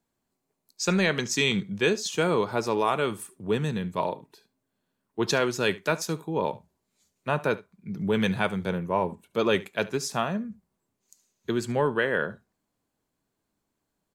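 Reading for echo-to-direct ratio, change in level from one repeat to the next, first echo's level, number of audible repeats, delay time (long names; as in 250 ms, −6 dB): −20.0 dB, repeats not evenly spaced, −20.0 dB, 1, 72 ms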